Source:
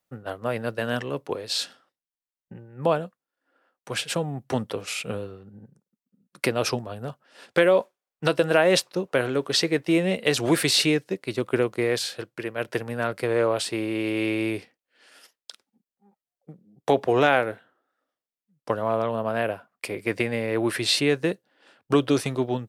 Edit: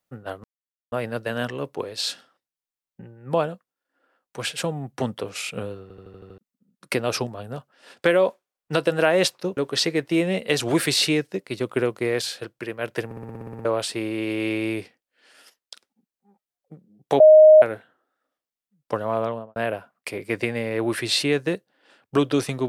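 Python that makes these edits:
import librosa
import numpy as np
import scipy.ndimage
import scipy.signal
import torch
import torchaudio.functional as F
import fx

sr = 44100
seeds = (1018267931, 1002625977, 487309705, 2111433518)

y = fx.studio_fade_out(x, sr, start_s=19.0, length_s=0.33)
y = fx.edit(y, sr, fx.insert_silence(at_s=0.44, length_s=0.48),
    fx.stutter_over(start_s=5.34, slice_s=0.08, count=7),
    fx.cut(start_s=9.09, length_s=0.25),
    fx.stutter_over(start_s=12.82, slice_s=0.06, count=10),
    fx.bleep(start_s=16.97, length_s=0.42, hz=621.0, db=-6.5), tone=tone)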